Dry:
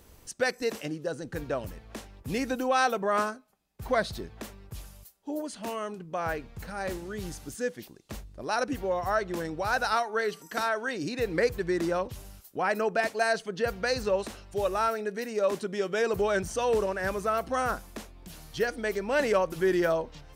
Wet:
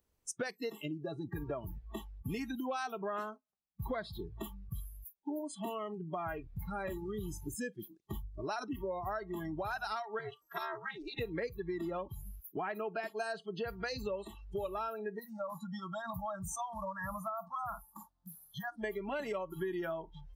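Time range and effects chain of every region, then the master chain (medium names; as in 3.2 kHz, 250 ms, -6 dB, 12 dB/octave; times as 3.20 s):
10.19–11.19 s: high-pass 420 Hz + AM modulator 300 Hz, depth 90% + tape noise reduction on one side only decoder only
15.19–18.84 s: bass shelf 120 Hz -7.5 dB + compression 4:1, threshold -27 dBFS + static phaser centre 1 kHz, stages 4
whole clip: spectral noise reduction 28 dB; compression 6:1, threshold -39 dBFS; trim +3 dB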